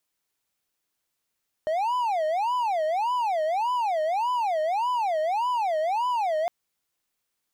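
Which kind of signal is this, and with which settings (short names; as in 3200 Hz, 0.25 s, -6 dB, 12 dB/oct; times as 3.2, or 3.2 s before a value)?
siren wail 617–1000 Hz 1.7/s triangle -20.5 dBFS 4.81 s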